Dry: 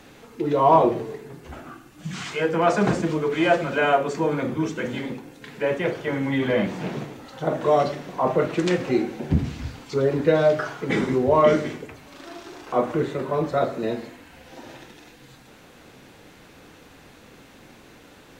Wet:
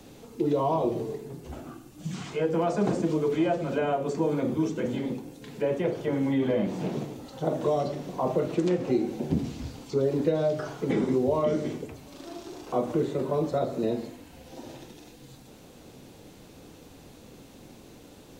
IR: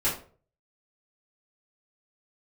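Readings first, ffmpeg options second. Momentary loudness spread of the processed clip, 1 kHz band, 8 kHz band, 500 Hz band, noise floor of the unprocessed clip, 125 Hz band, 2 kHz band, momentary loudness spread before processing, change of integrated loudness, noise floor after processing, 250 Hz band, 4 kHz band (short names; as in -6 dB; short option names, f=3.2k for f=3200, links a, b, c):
17 LU, -9.5 dB, n/a, -5.0 dB, -49 dBFS, -3.5 dB, -13.0 dB, 20 LU, -5.0 dB, -51 dBFS, -2.5 dB, -8.0 dB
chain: -filter_complex "[0:a]acrossover=split=190|2500[a][b][c];[a]acompressor=threshold=-38dB:ratio=4[d];[b]acompressor=threshold=-22dB:ratio=4[e];[c]acompressor=threshold=-46dB:ratio=4[f];[d][e][f]amix=inputs=3:normalize=0,equalizer=f=1.7k:w=0.77:g=-12,volume=1.5dB"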